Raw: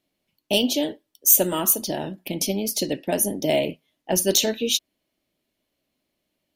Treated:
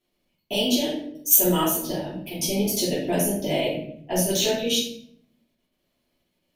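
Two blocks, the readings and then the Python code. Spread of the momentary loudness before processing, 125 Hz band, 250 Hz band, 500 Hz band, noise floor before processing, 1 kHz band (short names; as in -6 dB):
12 LU, +3.5 dB, +1.0 dB, -0.5 dB, -79 dBFS, +1.0 dB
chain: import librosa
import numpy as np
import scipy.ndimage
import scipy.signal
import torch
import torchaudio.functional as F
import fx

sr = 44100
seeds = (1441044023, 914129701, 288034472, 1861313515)

y = fx.level_steps(x, sr, step_db=13)
y = fx.room_shoebox(y, sr, seeds[0], volume_m3=120.0, walls='mixed', distance_m=3.0)
y = y * 10.0 ** (-6.5 / 20.0)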